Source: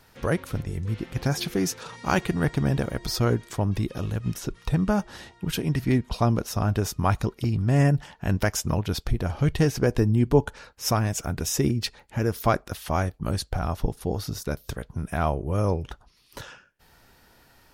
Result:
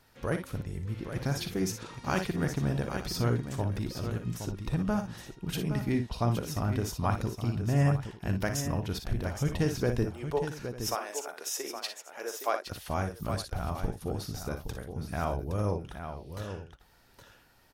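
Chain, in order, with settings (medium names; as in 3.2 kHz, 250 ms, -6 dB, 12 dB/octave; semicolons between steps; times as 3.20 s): 10.05–12.67 s: high-pass 440 Hz 24 dB/octave; multi-tap echo 42/58/817/898 ms -12.5/-9/-8.5/-17 dB; trim -7 dB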